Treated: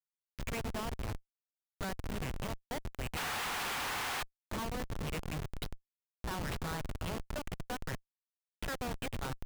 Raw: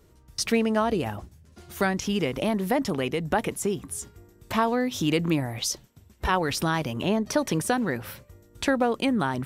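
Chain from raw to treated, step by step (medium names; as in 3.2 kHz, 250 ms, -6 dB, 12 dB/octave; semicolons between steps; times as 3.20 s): amplifier tone stack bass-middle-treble 10-0-10; repeats whose band climbs or falls 104 ms, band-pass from 3.4 kHz, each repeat -0.7 oct, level -7 dB; painted sound noise, 3.16–4.23 s, 700–5500 Hz -24 dBFS; distance through air 370 m; Schmitt trigger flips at -37.5 dBFS; trim +1 dB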